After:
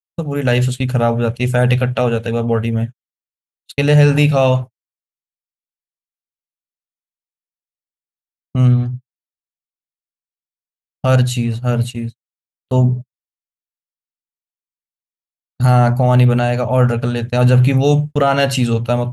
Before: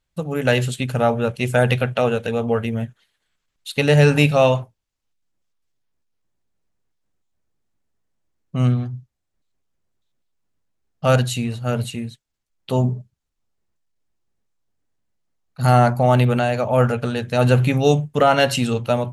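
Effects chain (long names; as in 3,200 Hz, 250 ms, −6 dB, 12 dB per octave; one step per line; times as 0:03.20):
noise gate −29 dBFS, range −47 dB
parametric band 66 Hz +8.5 dB 2.6 octaves
in parallel at +1.5 dB: brickwall limiter −8 dBFS, peak gain reduction 8.5 dB
on the sum: level −5 dB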